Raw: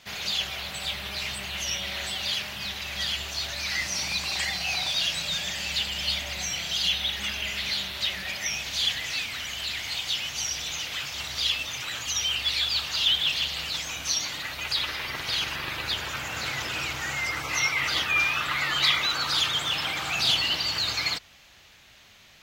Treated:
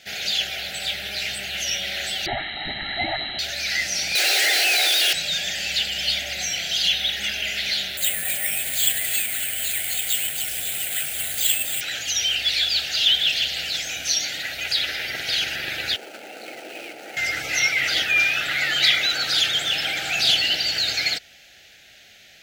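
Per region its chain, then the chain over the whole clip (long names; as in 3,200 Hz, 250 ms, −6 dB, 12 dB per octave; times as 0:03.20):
0:02.26–0:03.39: comb filter 1 ms, depth 85% + voice inversion scrambler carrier 4,000 Hz
0:04.15–0:05.13: comparator with hysteresis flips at −41.5 dBFS + mid-hump overdrive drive 17 dB, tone 7,900 Hz, clips at −18.5 dBFS + Butterworth high-pass 300 Hz 96 dB per octave
0:07.97–0:11.81: high-frequency loss of the air 220 metres + echo with a time of its own for lows and highs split 1,600 Hz, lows 165 ms, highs 274 ms, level −10 dB + bad sample-rate conversion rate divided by 4×, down filtered, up zero stuff
0:15.96–0:17.17: running median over 25 samples + high-pass filter 260 Hz 24 dB per octave
whole clip: Chebyshev band-stop filter 750–1,500 Hz, order 2; low-shelf EQ 220 Hz −9 dB; level +5.5 dB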